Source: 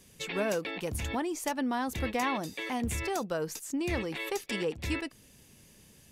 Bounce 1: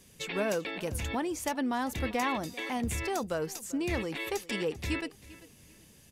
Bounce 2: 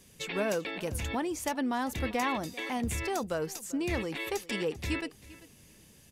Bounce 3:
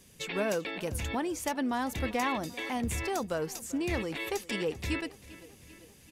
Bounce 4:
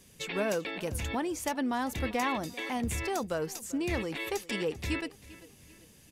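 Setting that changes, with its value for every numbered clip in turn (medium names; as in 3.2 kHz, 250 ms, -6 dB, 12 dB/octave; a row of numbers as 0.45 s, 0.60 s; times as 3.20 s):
feedback delay, feedback: 27%, 16%, 61%, 41%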